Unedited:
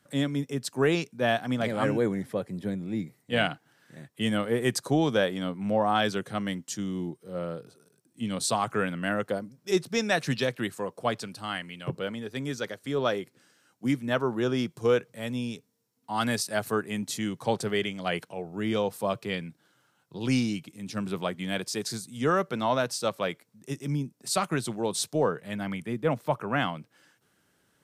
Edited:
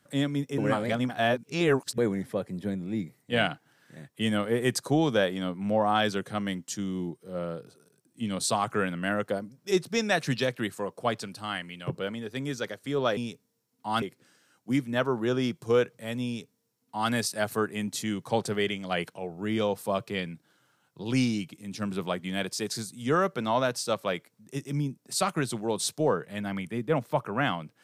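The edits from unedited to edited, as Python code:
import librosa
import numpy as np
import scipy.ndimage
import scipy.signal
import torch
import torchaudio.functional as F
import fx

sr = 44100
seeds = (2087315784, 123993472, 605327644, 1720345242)

y = fx.edit(x, sr, fx.reverse_span(start_s=0.58, length_s=1.4),
    fx.duplicate(start_s=15.41, length_s=0.85, to_s=13.17), tone=tone)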